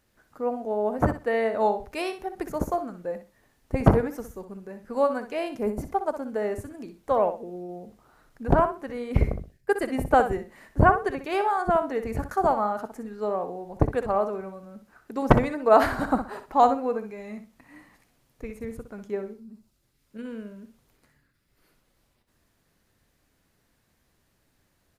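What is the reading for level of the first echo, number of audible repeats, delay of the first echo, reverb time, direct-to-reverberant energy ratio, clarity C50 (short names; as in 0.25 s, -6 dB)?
-10.0 dB, 2, 62 ms, none, none, none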